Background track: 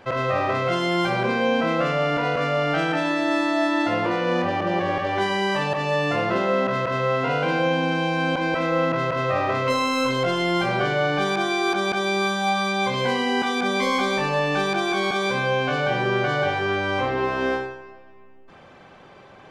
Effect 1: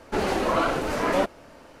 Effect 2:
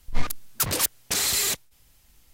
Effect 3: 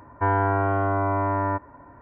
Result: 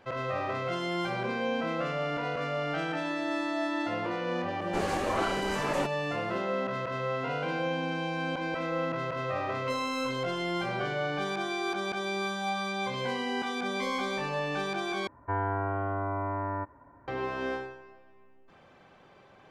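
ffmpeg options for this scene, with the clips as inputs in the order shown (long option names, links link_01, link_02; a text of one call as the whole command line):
ffmpeg -i bed.wav -i cue0.wav -i cue1.wav -i cue2.wav -filter_complex "[0:a]volume=-9.5dB[link_01];[1:a]equalizer=frequency=7500:width=1.4:gain=6[link_02];[link_01]asplit=2[link_03][link_04];[link_03]atrim=end=15.074[link_05];[3:a]atrim=end=2.01,asetpts=PTS-STARTPTS,volume=-8.5dB[link_06];[link_04]atrim=start=17.076[link_07];[link_02]atrim=end=1.8,asetpts=PTS-STARTPTS,volume=-8dB,afade=type=in:duration=0.004:curve=hsin,afade=type=out:start_time=1.796:duration=0.004:curve=hsin,adelay=203301S[link_08];[link_05][link_06]acrossfade=duration=0.004:curve1=hsin:curve2=hsin[link_09];[link_09][link_07]acrossfade=duration=0.004:curve1=hsin:curve2=hsin[link_10];[link_10][link_08]amix=inputs=2:normalize=0" out.wav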